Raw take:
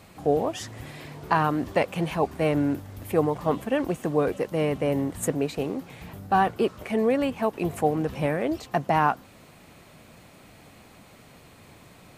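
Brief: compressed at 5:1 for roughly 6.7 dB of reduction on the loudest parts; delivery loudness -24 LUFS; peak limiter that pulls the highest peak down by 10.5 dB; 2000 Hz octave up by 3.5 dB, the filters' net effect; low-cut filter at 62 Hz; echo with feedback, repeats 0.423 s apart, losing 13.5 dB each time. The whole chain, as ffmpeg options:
-af "highpass=62,equalizer=f=2k:t=o:g=4.5,acompressor=threshold=-23dB:ratio=5,alimiter=limit=-20dB:level=0:latency=1,aecho=1:1:423|846:0.211|0.0444,volume=7.5dB"

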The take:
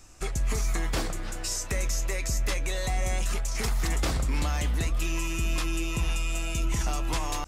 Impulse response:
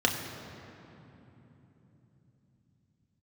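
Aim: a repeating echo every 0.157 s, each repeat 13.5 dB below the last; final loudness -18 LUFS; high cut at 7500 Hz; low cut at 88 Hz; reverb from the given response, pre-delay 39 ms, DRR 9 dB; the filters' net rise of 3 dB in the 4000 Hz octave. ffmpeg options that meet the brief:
-filter_complex "[0:a]highpass=88,lowpass=7.5k,equalizer=f=4k:t=o:g=4.5,aecho=1:1:157|314:0.211|0.0444,asplit=2[a][b];[1:a]atrim=start_sample=2205,adelay=39[c];[b][c]afir=irnorm=-1:irlink=0,volume=-21dB[d];[a][d]amix=inputs=2:normalize=0,volume=13dB"

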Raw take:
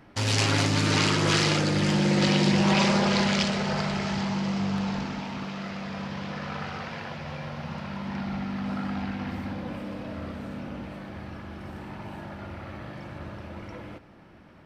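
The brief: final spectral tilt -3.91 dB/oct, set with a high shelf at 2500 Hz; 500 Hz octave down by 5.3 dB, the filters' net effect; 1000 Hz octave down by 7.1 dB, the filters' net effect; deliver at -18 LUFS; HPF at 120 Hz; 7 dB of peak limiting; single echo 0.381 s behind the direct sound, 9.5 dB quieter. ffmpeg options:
-af "highpass=120,equalizer=f=500:t=o:g=-5,equalizer=f=1k:t=o:g=-8.5,highshelf=f=2.5k:g=3.5,alimiter=limit=-15dB:level=0:latency=1,aecho=1:1:381:0.335,volume=10dB"

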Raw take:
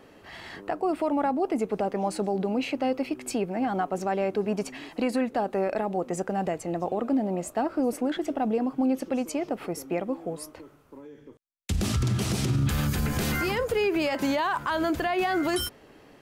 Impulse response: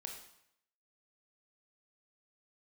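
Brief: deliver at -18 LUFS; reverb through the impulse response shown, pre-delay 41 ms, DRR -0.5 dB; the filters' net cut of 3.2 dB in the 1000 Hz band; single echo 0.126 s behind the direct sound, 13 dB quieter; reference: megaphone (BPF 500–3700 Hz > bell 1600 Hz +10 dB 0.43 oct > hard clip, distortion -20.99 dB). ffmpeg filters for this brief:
-filter_complex "[0:a]equalizer=f=1k:t=o:g=-5,aecho=1:1:126:0.224,asplit=2[a][b];[1:a]atrim=start_sample=2205,adelay=41[c];[b][c]afir=irnorm=-1:irlink=0,volume=3.5dB[d];[a][d]amix=inputs=2:normalize=0,highpass=500,lowpass=3.7k,equalizer=f=1.6k:t=o:w=0.43:g=10,asoftclip=type=hard:threshold=-19dB,volume=11dB"

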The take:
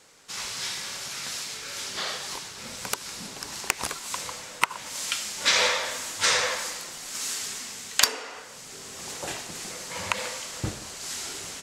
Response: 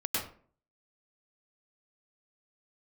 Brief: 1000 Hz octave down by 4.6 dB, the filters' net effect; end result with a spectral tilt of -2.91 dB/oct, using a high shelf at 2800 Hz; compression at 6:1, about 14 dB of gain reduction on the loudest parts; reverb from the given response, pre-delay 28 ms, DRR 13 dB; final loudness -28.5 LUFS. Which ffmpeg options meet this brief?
-filter_complex "[0:a]equalizer=f=1k:t=o:g=-4.5,highshelf=f=2.8k:g=-7.5,acompressor=threshold=-36dB:ratio=6,asplit=2[a][b];[1:a]atrim=start_sample=2205,adelay=28[c];[b][c]afir=irnorm=-1:irlink=0,volume=-19.5dB[d];[a][d]amix=inputs=2:normalize=0,volume=11dB"

